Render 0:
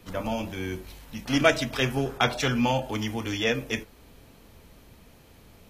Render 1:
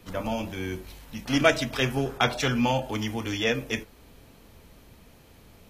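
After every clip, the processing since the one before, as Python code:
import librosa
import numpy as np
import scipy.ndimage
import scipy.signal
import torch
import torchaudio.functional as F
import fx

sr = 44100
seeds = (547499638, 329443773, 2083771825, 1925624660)

y = x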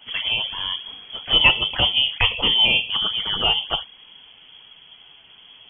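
y = fx.env_flanger(x, sr, rest_ms=11.2, full_db=-24.5)
y = fx.freq_invert(y, sr, carrier_hz=3300)
y = F.gain(torch.from_numpy(y), 7.5).numpy()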